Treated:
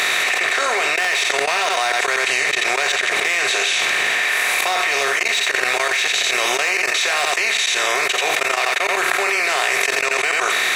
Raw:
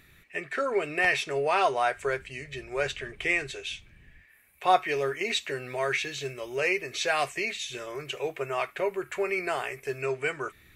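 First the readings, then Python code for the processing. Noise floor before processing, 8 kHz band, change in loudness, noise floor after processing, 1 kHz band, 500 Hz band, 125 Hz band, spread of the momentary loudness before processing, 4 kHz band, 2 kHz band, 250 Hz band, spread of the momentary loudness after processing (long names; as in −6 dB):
−58 dBFS, +20.0 dB, +12.0 dB, −21 dBFS, +8.5 dB, +4.5 dB, can't be measured, 11 LU, +17.0 dB, +14.5 dB, +2.5 dB, 1 LU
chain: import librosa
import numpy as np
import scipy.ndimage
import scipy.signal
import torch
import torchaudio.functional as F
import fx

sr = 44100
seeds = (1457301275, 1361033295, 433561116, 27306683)

p1 = fx.bin_compress(x, sr, power=0.4)
p2 = fx.high_shelf(p1, sr, hz=2300.0, db=8.0)
p3 = np.clip(10.0 ** (12.0 / 20.0) * p2, -1.0, 1.0) / 10.0 ** (12.0 / 20.0)
p4 = fx.auto_swell(p3, sr, attack_ms=735.0)
p5 = fx.highpass(p4, sr, hz=920.0, slope=6)
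p6 = fx.level_steps(p5, sr, step_db=23)
p7 = p6 + fx.echo_single(p6, sr, ms=86, db=-11.0, dry=0)
p8 = fx.env_flatten(p7, sr, amount_pct=100)
y = F.gain(torch.from_numpy(p8), 3.0).numpy()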